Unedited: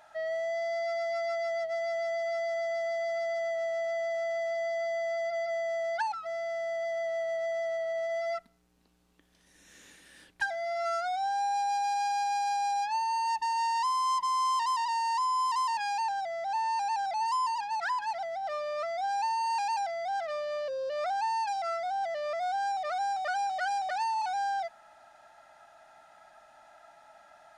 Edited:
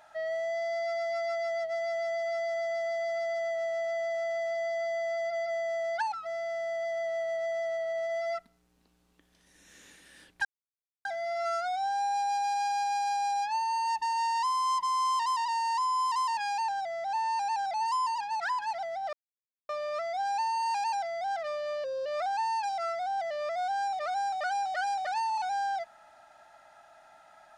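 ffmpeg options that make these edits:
ffmpeg -i in.wav -filter_complex "[0:a]asplit=3[link_01][link_02][link_03];[link_01]atrim=end=10.45,asetpts=PTS-STARTPTS,afade=type=out:start_time=10.446:duration=0.004:curve=hsin,apad=pad_dur=0.6[link_04];[link_02]atrim=start=10.45:end=18.53,asetpts=PTS-STARTPTS,afade=type=in:duration=0.004:curve=hsin,afade=type=out:start_time=8.076:duration=0.004:curve=hsin,apad=pad_dur=0.56[link_05];[link_03]atrim=start=18.53,asetpts=PTS-STARTPTS,afade=type=in:duration=0.004:curve=hsin[link_06];[link_04][link_05][link_06]concat=n=3:v=0:a=1" out.wav

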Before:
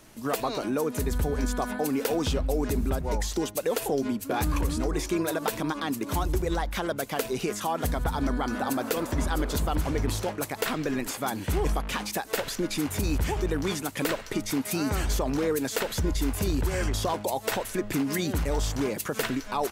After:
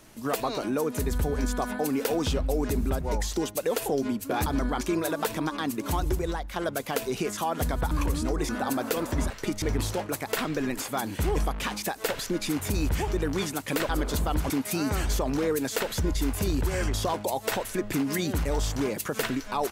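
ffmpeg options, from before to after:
ffmpeg -i in.wav -filter_complex "[0:a]asplit=10[link_01][link_02][link_03][link_04][link_05][link_06][link_07][link_08][link_09][link_10];[link_01]atrim=end=4.462[link_11];[link_02]atrim=start=8.138:end=8.492[link_12];[link_03]atrim=start=5.038:end=6.79,asetpts=PTS-STARTPTS,afade=type=out:start_time=1.312:duration=0.44:silence=0.398107[link_13];[link_04]atrim=start=6.79:end=8.142,asetpts=PTS-STARTPTS,afade=type=in:duration=0.004:curve=hsin:silence=0.398107[link_14];[link_05]atrim=start=4.458:end=5.042[link_15];[link_06]atrim=start=8.488:end=9.302[link_16];[link_07]atrim=start=14.178:end=14.502[link_17];[link_08]atrim=start=9.908:end=14.182[link_18];[link_09]atrim=start=9.298:end=9.912[link_19];[link_10]atrim=start=14.498[link_20];[link_11][link_12]acrossfade=duration=0.004:curve1=hsin:curve2=hsin[link_21];[link_13][link_14]concat=n=2:v=0:a=1[link_22];[link_21][link_22]acrossfade=duration=0.004:curve1=hsin:curve2=hsin[link_23];[link_23][link_15]acrossfade=duration=0.004:curve1=hsin:curve2=hsin[link_24];[link_24][link_16]acrossfade=duration=0.004:curve1=hsin:curve2=hsin[link_25];[link_25][link_17]acrossfade=duration=0.004:curve1=hsin:curve2=hsin[link_26];[link_26][link_18]acrossfade=duration=0.004:curve1=hsin:curve2=hsin[link_27];[link_27][link_19]acrossfade=duration=0.004:curve1=hsin:curve2=hsin[link_28];[link_28][link_20]acrossfade=duration=0.004:curve1=hsin:curve2=hsin" out.wav

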